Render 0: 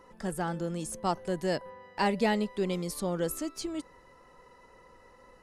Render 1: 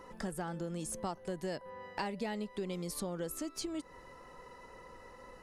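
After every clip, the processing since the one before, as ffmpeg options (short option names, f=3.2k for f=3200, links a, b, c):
-af "acompressor=threshold=-40dB:ratio=5,volume=3.5dB"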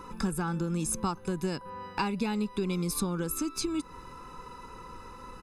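-af "aecho=1:1:0.8:0.8,volume=6dB"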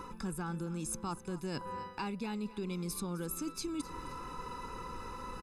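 -af "areverse,acompressor=threshold=-39dB:ratio=5,areverse,aecho=1:1:260|520|780:0.141|0.0523|0.0193,volume=2.5dB"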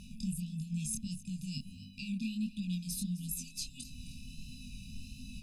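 -af "afftfilt=real='re*(1-between(b*sr/4096,260,2400))':imag='im*(1-between(b*sr/4096,260,2400))':win_size=4096:overlap=0.75,flanger=delay=19.5:depth=7.8:speed=1.5,volume=5.5dB"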